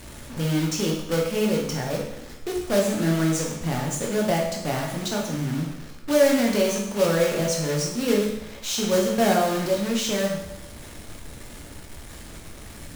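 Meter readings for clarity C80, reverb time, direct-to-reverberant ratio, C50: 6.5 dB, 0.85 s, -1.5 dB, 3.5 dB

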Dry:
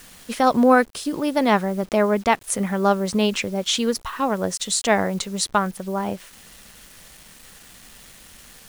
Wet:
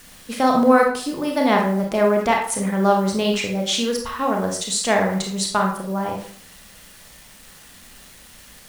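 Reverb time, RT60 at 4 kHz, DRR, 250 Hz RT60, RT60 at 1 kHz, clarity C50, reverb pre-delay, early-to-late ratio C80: 0.50 s, 0.40 s, 1.0 dB, 0.50 s, 0.50 s, 5.0 dB, 27 ms, 9.0 dB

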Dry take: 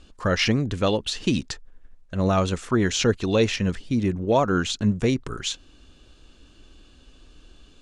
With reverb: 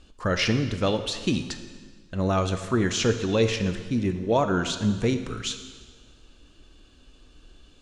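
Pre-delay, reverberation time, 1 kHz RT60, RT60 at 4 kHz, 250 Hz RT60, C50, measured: 8 ms, 1.6 s, 1.6 s, 1.5 s, 1.6 s, 9.5 dB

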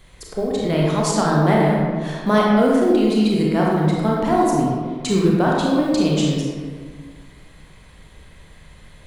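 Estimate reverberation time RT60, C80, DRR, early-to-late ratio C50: 1.8 s, 1.0 dB, -3.5 dB, -1.5 dB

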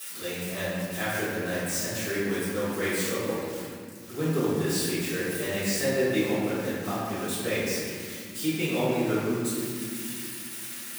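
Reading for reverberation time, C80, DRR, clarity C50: 2.2 s, -0.5 dB, -13.5 dB, -3.0 dB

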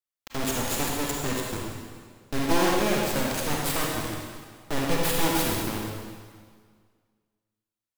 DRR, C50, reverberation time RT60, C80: -2.5 dB, -1.0 dB, 1.8 s, 1.5 dB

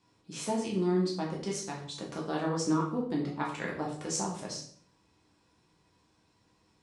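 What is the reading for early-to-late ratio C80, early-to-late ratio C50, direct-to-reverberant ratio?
9.0 dB, 5.5 dB, -3.5 dB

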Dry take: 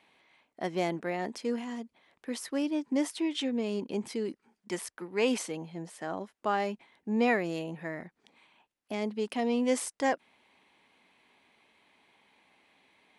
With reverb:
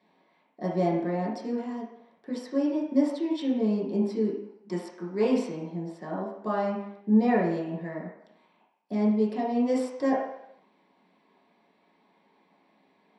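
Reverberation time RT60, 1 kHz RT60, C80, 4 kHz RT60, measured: 0.75 s, 0.80 s, 6.0 dB, 0.70 s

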